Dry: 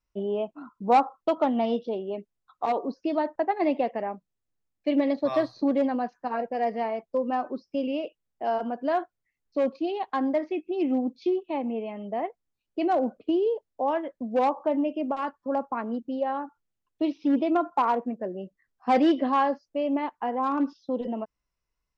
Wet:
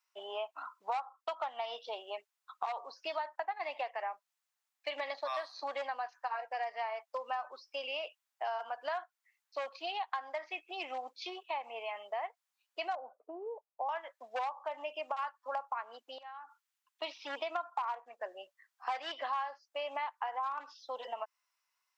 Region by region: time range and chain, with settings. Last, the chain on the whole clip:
0:12.95–0:13.89: Bessel low-pass filter 750 Hz, order 8 + one half of a high-frequency compander decoder only
0:16.18–0:17.02: parametric band 570 Hz −12.5 dB 0.69 octaves + downward compressor 20 to 1, threshold −45 dBFS
whole clip: high-pass filter 840 Hz 24 dB per octave; downward compressor 6 to 1, threshold −41 dBFS; level +6.5 dB

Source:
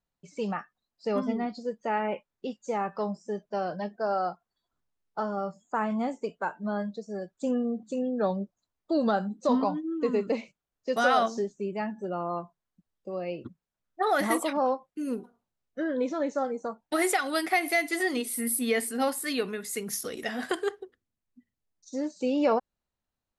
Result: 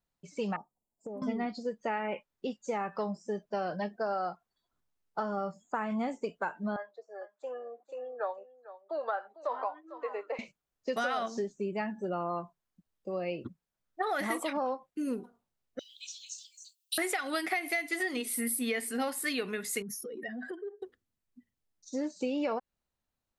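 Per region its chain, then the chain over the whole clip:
0:00.56–0:01.22: Chebyshev band-stop filter 940–7,100 Hz, order 4 + downward compressor 12 to 1, threshold −37 dBFS
0:06.76–0:10.39: inverse Chebyshev high-pass filter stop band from 160 Hz, stop band 50 dB + three-way crossover with the lows and the highs turned down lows −14 dB, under 580 Hz, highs −21 dB, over 2,200 Hz + single-tap delay 450 ms −17 dB
0:15.79–0:16.98: Butterworth high-pass 2,600 Hz 96 dB per octave + spectral tilt +4 dB per octave
0:19.82–0:20.82: expanding power law on the bin magnitudes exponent 2.1 + downward compressor 4 to 1, threshold −38 dBFS
whole clip: dynamic equaliser 2,200 Hz, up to +5 dB, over −46 dBFS, Q 1.2; downward compressor 6 to 1, threshold −29 dBFS

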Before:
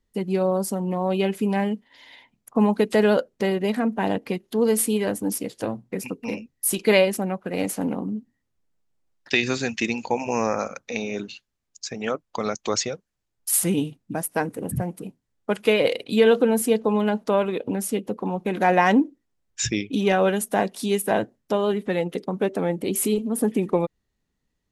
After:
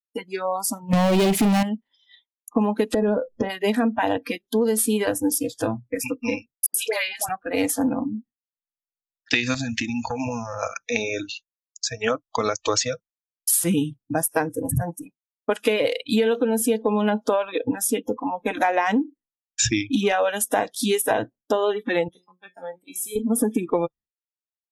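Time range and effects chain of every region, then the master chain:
0:00.93–0:01.63: leveller curve on the samples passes 5 + parametric band 1,500 Hz −7 dB 0.75 octaves
0:02.94–0:03.50: tilt shelving filter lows +9.5 dB, about 1,400 Hz + double-tracking delay 25 ms −11.5 dB + downward compressor, threshold −19 dBFS
0:06.66–0:07.29: high-pass filter 490 Hz + downward compressor 3 to 1, threshold −27 dBFS + all-pass dispersion highs, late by 83 ms, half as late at 1,000 Hz
0:09.54–0:10.63: low-shelf EQ 310 Hz +10.5 dB + downward compressor 10 to 1, threshold −26 dBFS + saturating transformer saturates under 590 Hz
0:22.08–0:23.16: high-pass filter 67 Hz + tuned comb filter 180 Hz, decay 0.53 s, mix 80%
whole clip: noise reduction from a noise print of the clip's start 26 dB; downward expander −46 dBFS; downward compressor 10 to 1, threshold −24 dBFS; level +7 dB

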